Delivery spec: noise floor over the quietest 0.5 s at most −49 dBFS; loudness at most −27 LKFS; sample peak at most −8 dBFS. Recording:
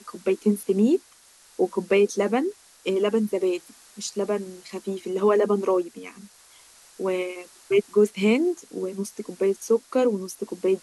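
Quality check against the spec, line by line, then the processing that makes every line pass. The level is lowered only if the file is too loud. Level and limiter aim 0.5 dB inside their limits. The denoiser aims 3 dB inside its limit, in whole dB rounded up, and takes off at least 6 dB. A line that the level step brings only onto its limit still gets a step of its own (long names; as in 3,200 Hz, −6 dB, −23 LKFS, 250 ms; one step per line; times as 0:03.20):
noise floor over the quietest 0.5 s −54 dBFS: in spec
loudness −24.5 LKFS: out of spec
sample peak −9.0 dBFS: in spec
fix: level −3 dB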